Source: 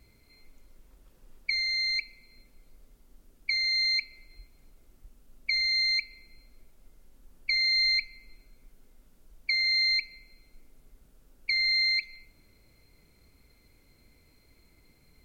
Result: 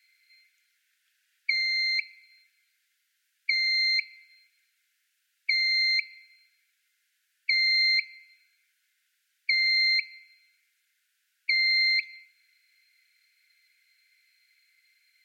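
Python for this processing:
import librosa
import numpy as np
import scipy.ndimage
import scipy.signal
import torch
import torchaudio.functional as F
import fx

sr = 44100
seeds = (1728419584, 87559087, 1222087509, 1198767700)

y = scipy.signal.sosfilt(scipy.signal.butter(16, 1500.0, 'highpass', fs=sr, output='sos'), x)
y = fx.high_shelf(y, sr, hz=4800.0, db=-11.5)
y = F.gain(torch.from_numpy(y), 5.5).numpy()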